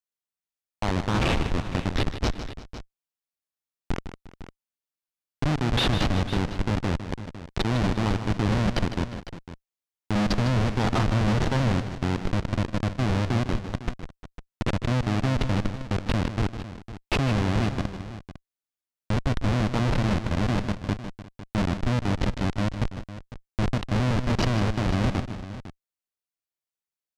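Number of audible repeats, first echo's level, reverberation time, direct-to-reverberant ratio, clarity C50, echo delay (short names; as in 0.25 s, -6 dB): 3, -10.5 dB, none, none, none, 0.154 s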